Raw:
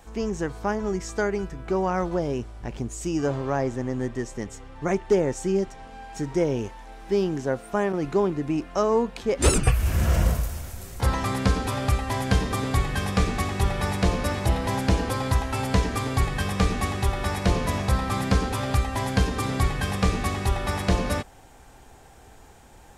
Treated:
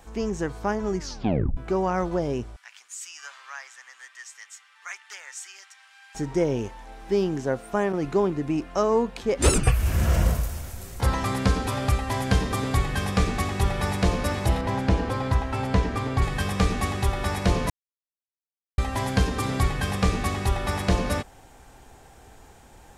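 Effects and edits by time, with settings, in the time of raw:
0.97 tape stop 0.60 s
2.56–6.15 HPF 1400 Hz 24 dB/oct
14.61–16.22 LPF 2600 Hz 6 dB/oct
17.7–18.78 mute

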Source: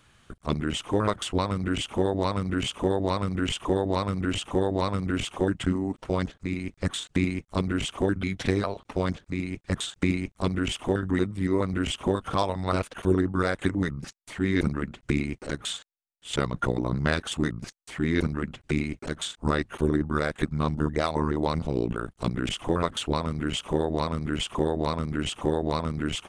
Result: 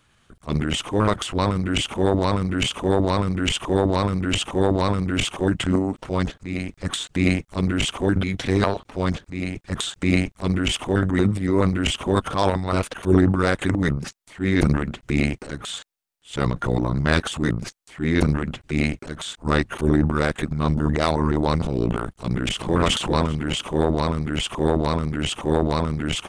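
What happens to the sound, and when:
22.14–22.76 echo throw 0.39 s, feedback 20%, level -5 dB
whole clip: transient shaper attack -5 dB, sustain +10 dB; upward expander 1.5:1, over -38 dBFS; gain +7 dB

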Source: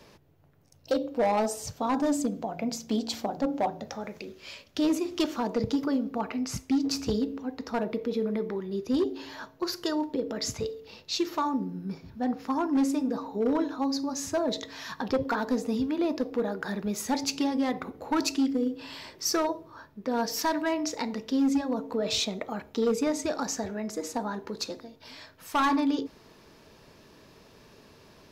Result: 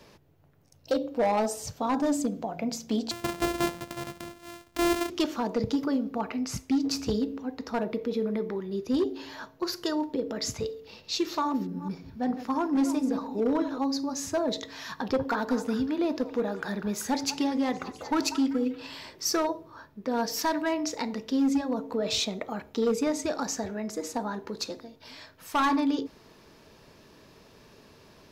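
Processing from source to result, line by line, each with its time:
3.11–5.1 sample sorter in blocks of 128 samples
10.8–13.78 reverse delay 0.217 s, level -11 dB
14.99–18.9 delay with a stepping band-pass 0.193 s, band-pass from 1100 Hz, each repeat 0.7 oct, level -9 dB

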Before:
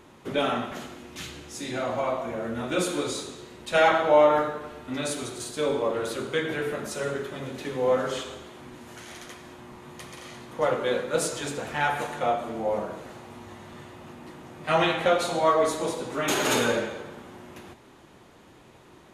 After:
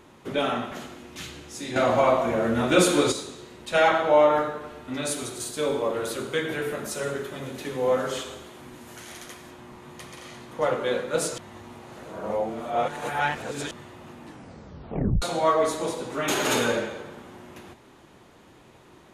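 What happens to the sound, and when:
1.76–3.12 gain +7.5 dB
5.07–9.51 high shelf 9900 Hz +10 dB
11.38–13.71 reverse
14.22 tape stop 1.00 s

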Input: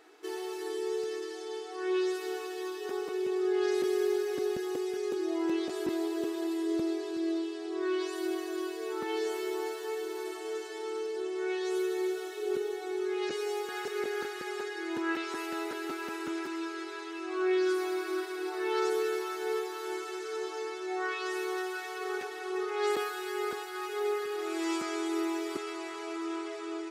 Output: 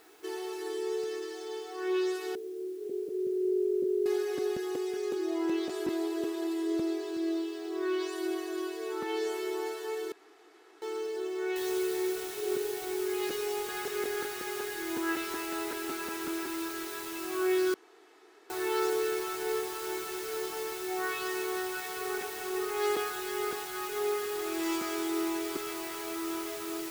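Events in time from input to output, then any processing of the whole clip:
2.35–4.06 steep low-pass 580 Hz 72 dB/oct
10.12–10.82 room tone
11.56 noise floor step -64 dB -44 dB
17.74–18.5 room tone

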